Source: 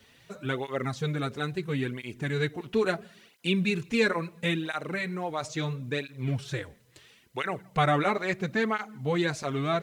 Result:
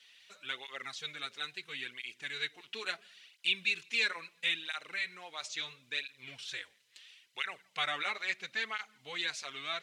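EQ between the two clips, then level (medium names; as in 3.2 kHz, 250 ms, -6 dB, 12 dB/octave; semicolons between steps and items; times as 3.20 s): band-pass filter 2.9 kHz, Q 1.3; treble shelf 3.3 kHz +11 dB; -2.5 dB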